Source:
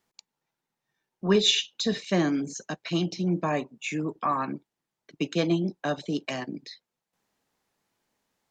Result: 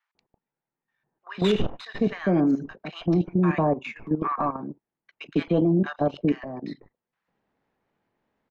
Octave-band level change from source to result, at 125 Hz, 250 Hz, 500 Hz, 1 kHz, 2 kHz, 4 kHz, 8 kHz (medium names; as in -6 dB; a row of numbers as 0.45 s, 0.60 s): +4.5 dB, +4.0 dB, +3.0 dB, +2.0 dB, -1.5 dB, -11.0 dB, under -15 dB